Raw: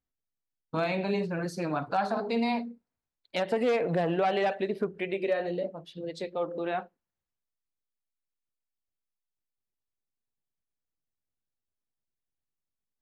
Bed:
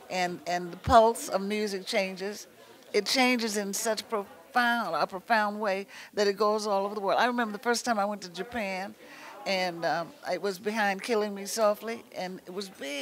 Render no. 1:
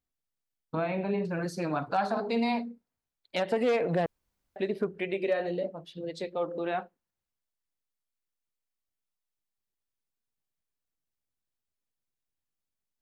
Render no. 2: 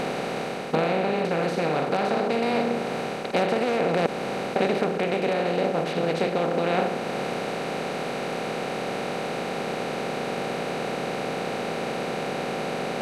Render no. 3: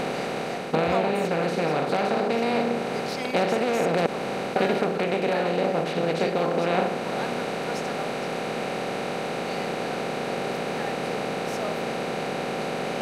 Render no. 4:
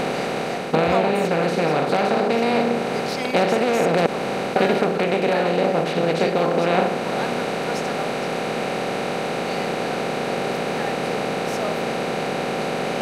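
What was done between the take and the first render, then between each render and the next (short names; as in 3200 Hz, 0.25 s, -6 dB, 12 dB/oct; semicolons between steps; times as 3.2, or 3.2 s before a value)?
0.75–1.25 air absorption 410 m; 4.06–4.56 room tone
per-bin compression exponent 0.2; vocal rider within 4 dB 0.5 s
add bed -10.5 dB
gain +4.5 dB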